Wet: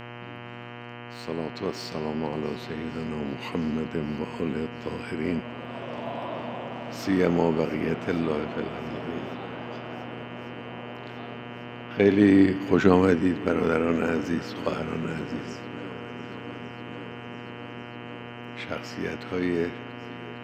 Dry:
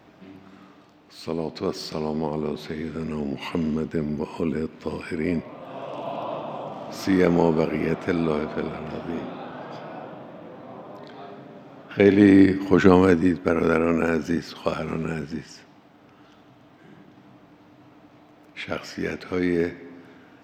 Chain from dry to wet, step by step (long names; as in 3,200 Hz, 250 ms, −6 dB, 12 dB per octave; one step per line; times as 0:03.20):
hum with harmonics 120 Hz, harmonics 26, −37 dBFS −3 dB per octave
feedback echo with a long and a short gap by turns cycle 1,146 ms, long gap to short 1.5 to 1, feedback 66%, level −18.5 dB
level −3.5 dB